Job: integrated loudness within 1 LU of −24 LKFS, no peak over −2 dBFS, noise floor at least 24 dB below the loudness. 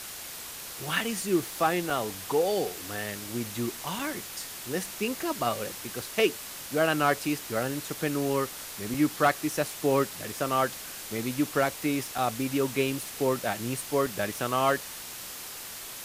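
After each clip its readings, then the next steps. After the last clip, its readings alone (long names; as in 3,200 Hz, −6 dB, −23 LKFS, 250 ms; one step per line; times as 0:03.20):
number of dropouts 5; longest dropout 3.0 ms; background noise floor −41 dBFS; target noise floor −54 dBFS; integrated loudness −29.5 LKFS; sample peak −11.0 dBFS; target loudness −24.0 LKFS
→ repair the gap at 0:01.90/0:03.99/0:08.94/0:12.18/0:14.06, 3 ms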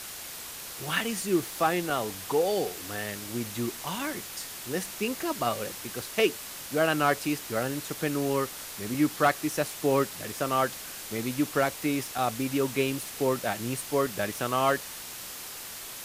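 number of dropouts 0; background noise floor −41 dBFS; target noise floor −54 dBFS
→ broadband denoise 13 dB, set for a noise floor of −41 dBFS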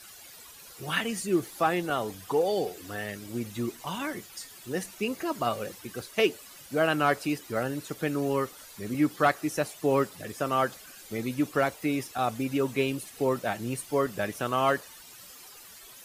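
background noise floor −49 dBFS; target noise floor −54 dBFS
→ broadband denoise 6 dB, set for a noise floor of −49 dBFS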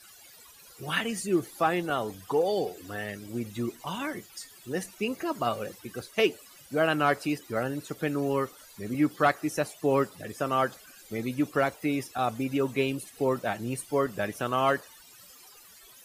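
background noise floor −53 dBFS; target noise floor −54 dBFS
→ broadband denoise 6 dB, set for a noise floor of −53 dBFS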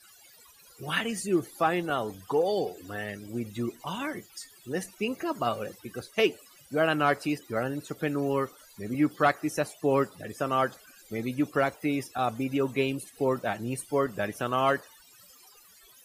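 background noise floor −56 dBFS; integrated loudness −29.5 LKFS; sample peak −11.0 dBFS; target loudness −24.0 LKFS
→ level +5.5 dB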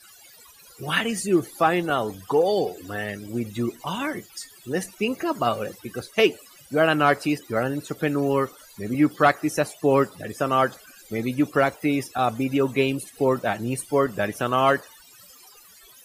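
integrated loudness −24.0 LKFS; sample peak −5.5 dBFS; background noise floor −51 dBFS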